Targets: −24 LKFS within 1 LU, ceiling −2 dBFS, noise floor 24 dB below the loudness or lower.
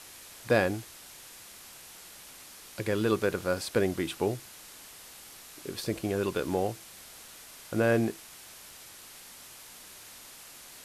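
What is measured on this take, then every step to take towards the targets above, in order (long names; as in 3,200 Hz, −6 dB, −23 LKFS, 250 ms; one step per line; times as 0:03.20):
background noise floor −50 dBFS; target noise floor −54 dBFS; integrated loudness −30.0 LKFS; sample peak −10.0 dBFS; target loudness −24.0 LKFS
→ noise reduction from a noise print 6 dB
level +6 dB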